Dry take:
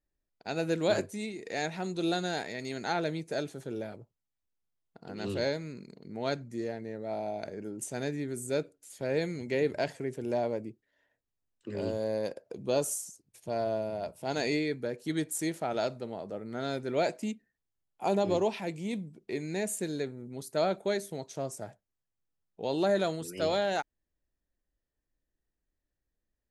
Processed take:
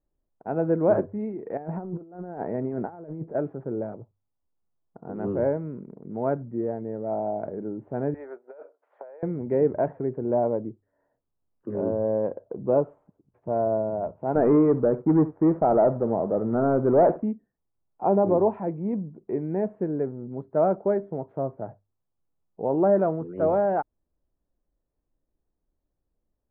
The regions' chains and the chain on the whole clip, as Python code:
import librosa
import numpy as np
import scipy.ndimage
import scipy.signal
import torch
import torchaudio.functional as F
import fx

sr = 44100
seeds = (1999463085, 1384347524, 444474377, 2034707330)

y = fx.chain(x, sr, fx.high_shelf(hz=2200.0, db=-12.0),
    fx.over_compress(threshold_db=-39.0, ratio=-0.5), at=(1.57, 3.35))
y = fx.chain(y, sr, fx.highpass(hz=590.0, slope=24),
    fx.over_compress(threshold_db=-46.0, ratio=-1.0), at=(8.14, 9.23))
y = fx.chain(y, sr, fx.lowpass(hz=1900.0, slope=12),
    fx.leveller(passes=2),
    fx.echo_single(ms=70, db=-16.5), at=(14.35, 17.23))
y = scipy.signal.sosfilt(scipy.signal.cheby2(4, 70, 5000.0, 'lowpass', fs=sr, output='sos'), y)
y = fx.hum_notches(y, sr, base_hz=50, count=2)
y = y * 10.0 ** (7.0 / 20.0)